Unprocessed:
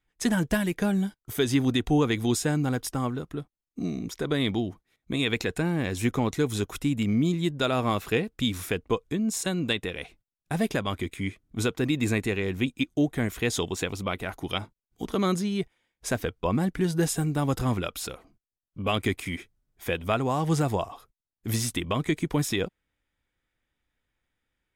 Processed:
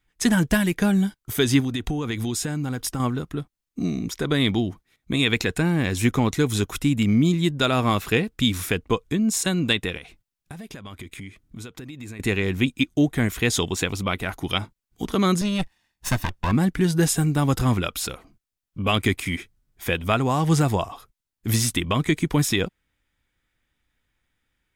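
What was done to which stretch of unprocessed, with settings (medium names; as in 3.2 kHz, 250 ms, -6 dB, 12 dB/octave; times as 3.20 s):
1.60–3.00 s: compression, threshold -28 dBFS
9.97–12.20 s: compression 8:1, threshold -40 dBFS
15.41–16.52 s: comb filter that takes the minimum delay 1.1 ms
whole clip: peaking EQ 540 Hz -4.5 dB 1.6 oct; trim +6.5 dB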